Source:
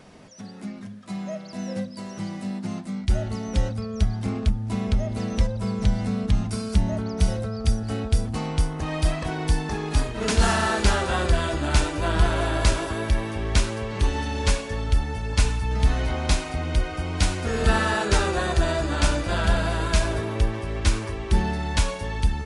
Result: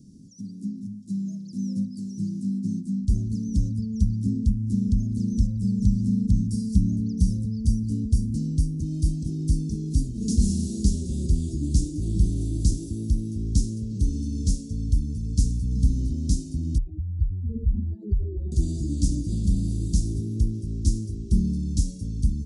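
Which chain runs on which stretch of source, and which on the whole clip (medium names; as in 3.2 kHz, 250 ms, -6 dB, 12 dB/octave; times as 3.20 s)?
16.78–18.52 s: spectral contrast enhancement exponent 3.2 + AM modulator 97 Hz, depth 10%
whole clip: Chebyshev band-stop 280–5600 Hz, order 3; peaking EQ 170 Hz +7.5 dB 2.3 oct; trim -3 dB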